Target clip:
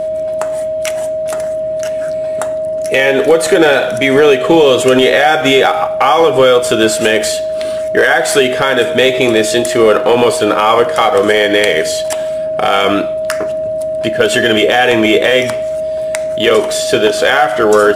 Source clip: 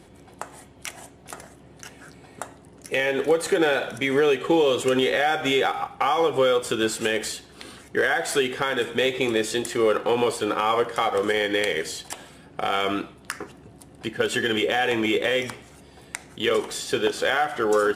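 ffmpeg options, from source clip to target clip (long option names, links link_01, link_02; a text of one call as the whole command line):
ffmpeg -i in.wav -af "aeval=exprs='val(0)+0.0447*sin(2*PI*630*n/s)':channel_layout=same,apsyclip=14dB,volume=-1.5dB" out.wav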